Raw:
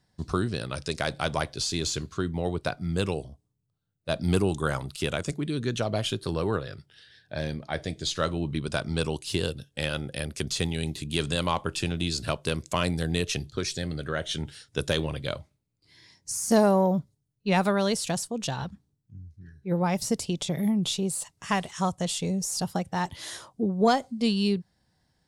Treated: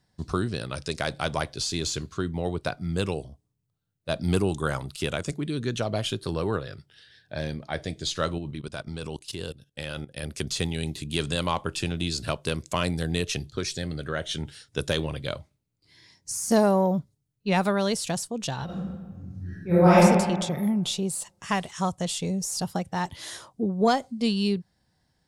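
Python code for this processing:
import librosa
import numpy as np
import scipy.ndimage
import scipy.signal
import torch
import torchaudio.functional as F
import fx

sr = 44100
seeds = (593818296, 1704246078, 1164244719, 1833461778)

y = fx.level_steps(x, sr, step_db=17, at=(8.38, 10.23))
y = fx.reverb_throw(y, sr, start_s=18.65, length_s=1.31, rt60_s=1.4, drr_db=-11.5)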